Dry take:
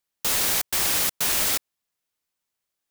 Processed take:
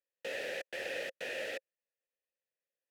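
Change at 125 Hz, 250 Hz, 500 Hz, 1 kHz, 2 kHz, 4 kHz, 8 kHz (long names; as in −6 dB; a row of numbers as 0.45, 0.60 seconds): −23.5, −14.5, −1.5, −18.5, −8.5, −18.5, −31.0 decibels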